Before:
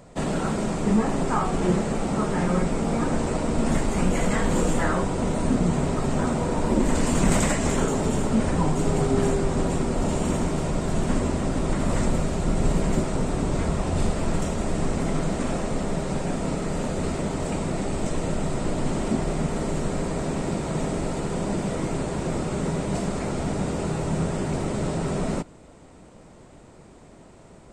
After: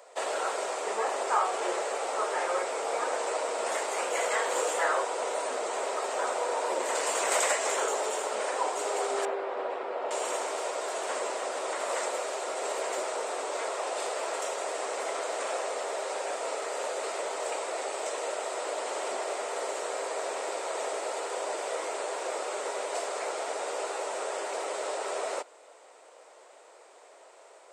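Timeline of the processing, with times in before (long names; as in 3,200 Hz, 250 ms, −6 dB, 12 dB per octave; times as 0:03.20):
0:09.25–0:10.11: high-frequency loss of the air 390 metres
whole clip: Butterworth high-pass 460 Hz 36 dB per octave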